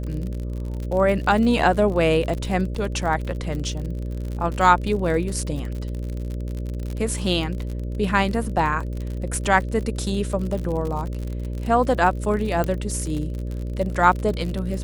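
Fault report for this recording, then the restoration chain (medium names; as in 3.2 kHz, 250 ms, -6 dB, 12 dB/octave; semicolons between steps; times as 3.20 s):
buzz 60 Hz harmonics 10 -28 dBFS
crackle 51 per s -28 dBFS
2.75 s: dropout 3.2 ms
12.64 s: pop -12 dBFS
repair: de-click; de-hum 60 Hz, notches 10; interpolate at 2.75 s, 3.2 ms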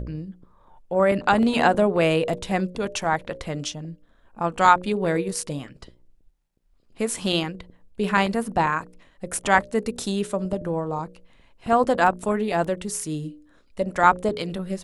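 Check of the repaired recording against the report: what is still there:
12.64 s: pop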